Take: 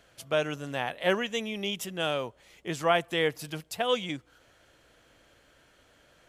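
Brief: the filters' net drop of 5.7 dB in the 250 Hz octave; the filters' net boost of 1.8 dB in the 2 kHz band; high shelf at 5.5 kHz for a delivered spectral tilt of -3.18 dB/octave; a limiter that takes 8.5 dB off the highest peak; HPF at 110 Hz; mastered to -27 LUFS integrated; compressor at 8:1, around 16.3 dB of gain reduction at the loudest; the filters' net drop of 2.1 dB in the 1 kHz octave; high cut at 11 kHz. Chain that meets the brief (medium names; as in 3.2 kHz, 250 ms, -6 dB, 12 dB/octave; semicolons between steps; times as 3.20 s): high-pass 110 Hz; low-pass 11 kHz; peaking EQ 250 Hz -8 dB; peaking EQ 1 kHz -3.5 dB; peaking EQ 2 kHz +4 dB; treble shelf 5.5 kHz -4.5 dB; compression 8:1, threshold -38 dBFS; trim +18 dB; peak limiter -14 dBFS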